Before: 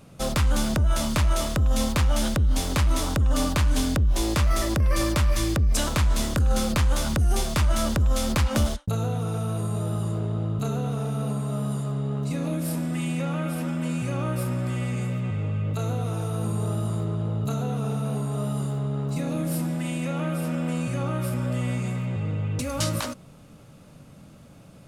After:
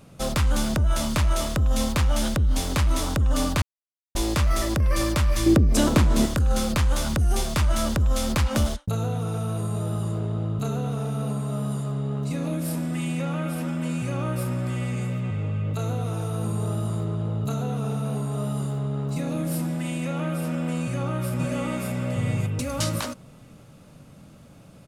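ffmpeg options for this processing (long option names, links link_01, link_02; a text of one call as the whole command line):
ffmpeg -i in.wav -filter_complex "[0:a]asettb=1/sr,asplit=3[link_01][link_02][link_03];[link_01]atrim=end=5.464[link_04];[link_02]atrim=start=5.46:end=6.26,asetpts=PTS-STARTPTS,afade=type=in:duration=0.004:curve=qsin,afade=type=out:start_time=0.796:duration=0.004:curve=qsin,equalizer=frequency=290:width=0.63:gain=12[link_05];[link_03]atrim=start=6.256[link_06];[link_04][link_05]acrossfade=duration=0.004:curve1=hsin:curve2=qsin[link_07];[link_07][link_06]acrossfade=duration=0.004:curve1=qsin:curve2=hsin,asplit=2[link_08][link_09];[link_09]afade=type=in:start_time=20.81:duration=0.01,afade=type=out:start_time=21.88:duration=0.01,aecho=0:1:580|1160|1740:0.944061|0.188812|0.0377624[link_10];[link_08][link_10]amix=inputs=2:normalize=0,asplit=3[link_11][link_12][link_13];[link_11]atrim=end=3.62,asetpts=PTS-STARTPTS,afade=type=out:start_time=3.616:duration=0.004:curve=hsin[link_14];[link_12]atrim=start=3.62:end=4.15,asetpts=PTS-STARTPTS,volume=0[link_15];[link_13]atrim=start=4.15,asetpts=PTS-STARTPTS,afade=type=in:duration=0.004:curve=hsin[link_16];[link_14][link_15][link_16]concat=n=3:v=0:a=1" out.wav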